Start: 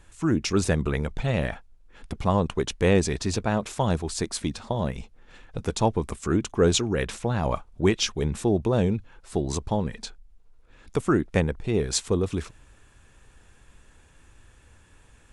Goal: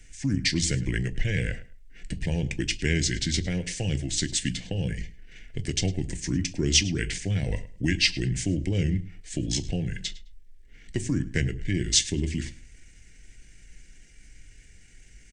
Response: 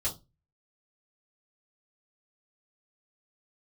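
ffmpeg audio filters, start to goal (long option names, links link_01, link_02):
-filter_complex "[0:a]asplit=2[link_01][link_02];[1:a]atrim=start_sample=2205,atrim=end_sample=4410[link_03];[link_02][link_03]afir=irnorm=-1:irlink=0,volume=-12.5dB[link_04];[link_01][link_04]amix=inputs=2:normalize=0,acrossover=split=120|3000[link_05][link_06][link_07];[link_06]acompressor=threshold=-26dB:ratio=2[link_08];[link_05][link_08][link_07]amix=inputs=3:normalize=0,asetrate=37084,aresample=44100,atempo=1.18921,firequalizer=gain_entry='entry(220,0);entry(1200,-26);entry(1700,6);entry(3300,2);entry(11000,8)':delay=0.05:min_phase=1,asplit=2[link_09][link_10];[link_10]adelay=105,lowpass=frequency=4900:poles=1,volume=-17dB,asplit=2[link_11][link_12];[link_12]adelay=105,lowpass=frequency=4900:poles=1,volume=0.22[link_13];[link_09][link_11][link_13]amix=inputs=3:normalize=0"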